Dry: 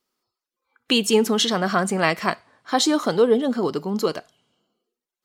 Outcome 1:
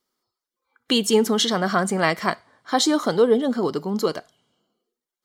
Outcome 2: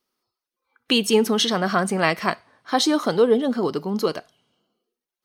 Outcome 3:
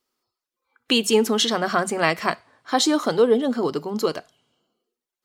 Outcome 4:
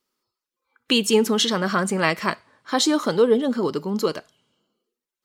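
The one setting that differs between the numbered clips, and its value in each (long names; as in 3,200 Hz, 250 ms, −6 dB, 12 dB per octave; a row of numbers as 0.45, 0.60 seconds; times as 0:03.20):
notch filter, centre frequency: 2,600, 7,300, 190, 720 Hertz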